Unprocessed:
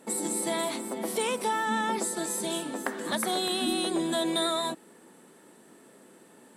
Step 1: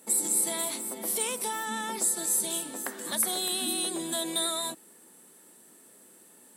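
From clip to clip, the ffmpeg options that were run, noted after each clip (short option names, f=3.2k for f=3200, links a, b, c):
-af "aemphasis=mode=production:type=75fm,volume=-6dB"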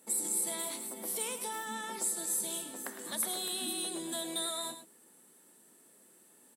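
-af "aecho=1:1:107:0.316,volume=-6.5dB"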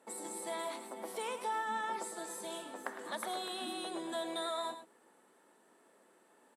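-af "bandpass=f=900:t=q:w=0.83:csg=0,volume=5.5dB"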